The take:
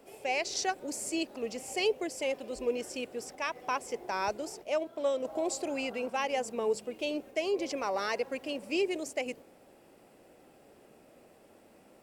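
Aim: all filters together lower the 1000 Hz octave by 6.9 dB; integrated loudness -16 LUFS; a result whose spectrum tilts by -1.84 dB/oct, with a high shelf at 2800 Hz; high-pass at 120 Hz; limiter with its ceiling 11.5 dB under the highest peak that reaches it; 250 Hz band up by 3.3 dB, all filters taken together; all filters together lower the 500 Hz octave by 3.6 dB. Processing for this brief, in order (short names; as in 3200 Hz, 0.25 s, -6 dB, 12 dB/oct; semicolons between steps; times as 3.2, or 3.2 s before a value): HPF 120 Hz; bell 250 Hz +7 dB; bell 500 Hz -4.5 dB; bell 1000 Hz -9 dB; high shelf 2800 Hz +7 dB; gain +21.5 dB; limiter -6.5 dBFS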